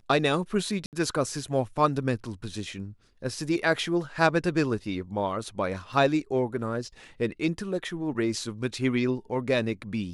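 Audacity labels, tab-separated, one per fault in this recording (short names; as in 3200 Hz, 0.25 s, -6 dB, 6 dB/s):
0.860000	0.930000	gap 68 ms
5.930000	5.930000	gap 3.1 ms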